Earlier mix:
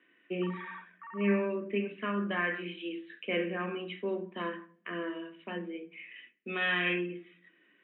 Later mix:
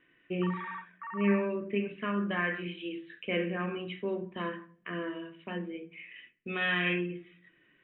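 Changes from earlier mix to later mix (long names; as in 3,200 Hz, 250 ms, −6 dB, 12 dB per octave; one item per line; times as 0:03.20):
background +5.5 dB
master: remove Butterworth high-pass 190 Hz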